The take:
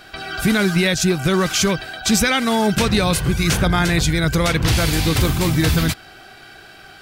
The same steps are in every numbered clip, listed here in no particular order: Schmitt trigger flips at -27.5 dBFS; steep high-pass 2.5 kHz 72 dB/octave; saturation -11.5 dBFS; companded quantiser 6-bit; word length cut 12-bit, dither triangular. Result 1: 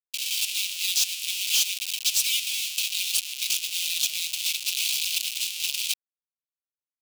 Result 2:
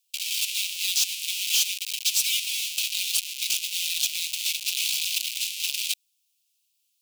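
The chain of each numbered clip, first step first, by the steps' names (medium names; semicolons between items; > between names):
word length cut > Schmitt trigger > steep high-pass > companded quantiser > saturation; companded quantiser > Schmitt trigger > word length cut > steep high-pass > saturation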